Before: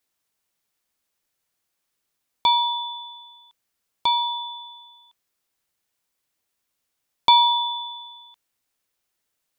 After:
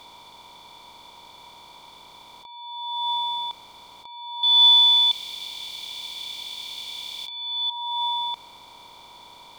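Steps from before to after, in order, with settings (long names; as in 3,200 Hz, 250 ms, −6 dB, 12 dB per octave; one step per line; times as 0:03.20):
compressor on every frequency bin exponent 0.4
compressor whose output falls as the input rises −23 dBFS, ratio −0.5
0:04.43–0:07.70: high shelf with overshoot 2,000 Hz +12.5 dB, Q 1.5
level −6 dB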